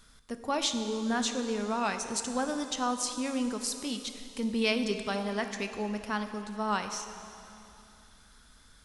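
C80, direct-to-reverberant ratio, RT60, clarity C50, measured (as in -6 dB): 8.5 dB, 7.0 dB, 2.8 s, 8.0 dB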